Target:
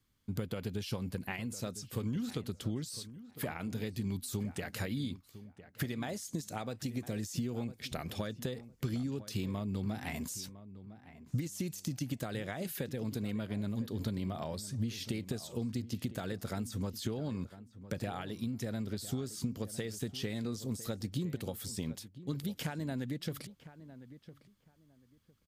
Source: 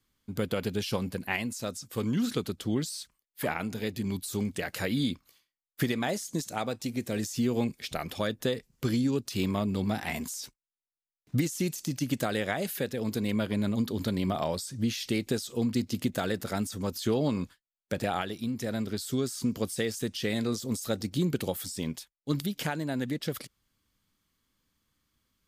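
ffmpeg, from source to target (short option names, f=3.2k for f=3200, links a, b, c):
-filter_complex "[0:a]acompressor=threshold=-33dB:ratio=6,equalizer=f=95:t=o:w=2:g=7,asplit=2[a][b];[b]adelay=1006,lowpass=f=1.7k:p=1,volume=-14.5dB,asplit=2[c][d];[d]adelay=1006,lowpass=f=1.7k:p=1,volume=0.21[e];[a][c][e]amix=inputs=3:normalize=0,volume=-3dB"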